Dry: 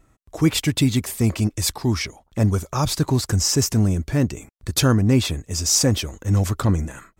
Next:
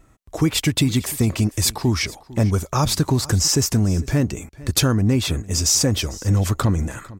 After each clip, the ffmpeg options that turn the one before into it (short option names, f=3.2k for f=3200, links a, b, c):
-af "acompressor=threshold=-18dB:ratio=6,aecho=1:1:451:0.1,volume=4dB"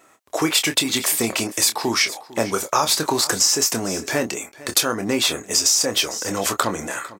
-filter_complex "[0:a]highpass=490,acompressor=threshold=-22dB:ratio=10,asplit=2[a][b];[b]adelay=26,volume=-8.5dB[c];[a][c]amix=inputs=2:normalize=0,volume=7.5dB"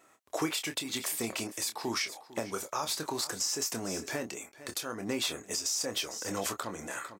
-af "alimiter=limit=-12.5dB:level=0:latency=1:release=476,volume=-8.5dB"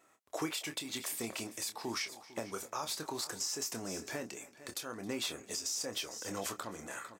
-af "aecho=1:1:269|538|807:0.0841|0.0328|0.0128,volume=-5dB"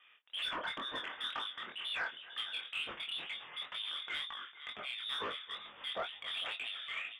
-filter_complex "[0:a]lowpass=f=3.2k:t=q:w=0.5098,lowpass=f=3.2k:t=q:w=0.6013,lowpass=f=3.2k:t=q:w=0.9,lowpass=f=3.2k:t=q:w=2.563,afreqshift=-3800,asplit=2[a][b];[b]highpass=f=720:p=1,volume=16dB,asoftclip=type=tanh:threshold=-24dB[c];[a][c]amix=inputs=2:normalize=0,lowpass=f=1.5k:p=1,volume=-6dB,flanger=delay=19:depth=6.7:speed=2.1,volume=3dB"